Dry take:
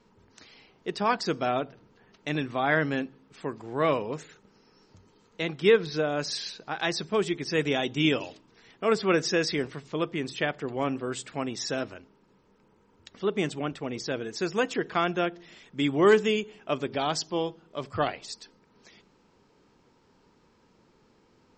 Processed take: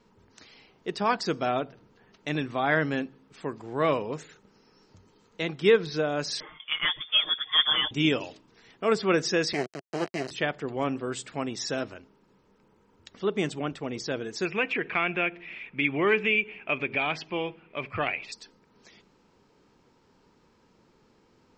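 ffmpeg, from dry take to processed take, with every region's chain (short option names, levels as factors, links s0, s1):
-filter_complex "[0:a]asettb=1/sr,asplit=3[s0][s1][s2];[s0]atrim=end=6.404[s3];[s1]atrim=start=6.4:end=7.91,asetpts=PTS-STARTPTS,afade=t=in:d=0.004:c=qsin,afade=t=out:st=1.506:d=0.004:c=qsin,highpass=f=200:w=0.5412,highpass=f=200:w=1.3066,lowpass=f=3100:t=q:w=0.5098,lowpass=f=3100:t=q:w=0.6013,lowpass=f=3100:t=q:w=0.9,lowpass=f=3100:t=q:w=2.563,afreqshift=-3700,aecho=1:1:6.5:0.73,atrim=end_sample=66591[s4];[s2]atrim=start=7.906[s5];[s3][s4]acrossfade=d=0.004:c1=hsin:c2=qsin[s6];[s6][s5]acrossfade=d=0.004:c1=qsin:c2=hsin,asettb=1/sr,asplit=3[s7][s8][s9];[s7]atrim=end=9.534[s10];[s8]atrim=start=9.53:end=10.31,asetpts=PTS-STARTPTS,afade=t=in:d=0.004:c=qsin,afade=t=out:st=0.776:d=0.004:c=qsin,acrusher=bits=3:dc=4:mix=0:aa=0.000001,asuperstop=centerf=3500:order=8:qfactor=5.7,highpass=f=140:w=0.5412,highpass=f=140:w=1.3066,equalizer=f=380:t=q:w=4:g=6,equalizer=f=670:t=q:w=4:g=9,equalizer=f=1900:t=q:w=4:g=4,lowpass=f=7000:w=0.5412,lowpass=f=7000:w=1.3066[s11];[s9]atrim=start=10.306[s12];[s10][s11]acrossfade=d=0.004:c1=hsin:c2=qsin[s13];[s13][s12]acrossfade=d=0.004:c1=qsin:c2=hsin,asettb=1/sr,asplit=3[s14][s15][s16];[s14]atrim=end=14.454[s17];[s15]atrim=start=14.45:end=18.32,asetpts=PTS-STARTPTS,afade=t=in:d=0.004:c=qsin,afade=t=out:st=3.866:d=0.004:c=qsin,lowpass=f=2400:t=q:w=10,acompressor=threshold=0.0355:ratio=1.5:attack=3.2:release=140:knee=1:detection=peak[s18];[s16]atrim=start=18.316[s19];[s17][s18]acrossfade=d=0.004:c1=hsin:c2=qsin[s20];[s20][s19]acrossfade=d=0.004:c1=qsin:c2=hsin"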